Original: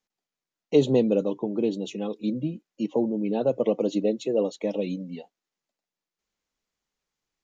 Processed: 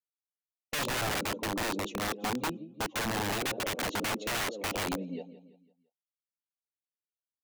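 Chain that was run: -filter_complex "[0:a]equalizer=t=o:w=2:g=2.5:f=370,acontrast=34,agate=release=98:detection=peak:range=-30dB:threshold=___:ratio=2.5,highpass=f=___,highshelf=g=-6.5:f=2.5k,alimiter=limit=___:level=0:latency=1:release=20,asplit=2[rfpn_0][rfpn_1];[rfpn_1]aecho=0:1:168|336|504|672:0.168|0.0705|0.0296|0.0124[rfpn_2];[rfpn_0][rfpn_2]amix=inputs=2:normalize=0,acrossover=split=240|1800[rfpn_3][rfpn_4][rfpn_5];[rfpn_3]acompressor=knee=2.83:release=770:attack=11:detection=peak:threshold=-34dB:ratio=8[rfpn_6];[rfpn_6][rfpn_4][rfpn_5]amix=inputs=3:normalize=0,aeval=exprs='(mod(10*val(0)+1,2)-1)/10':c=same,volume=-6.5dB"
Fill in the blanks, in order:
-32dB, 87, -11.5dB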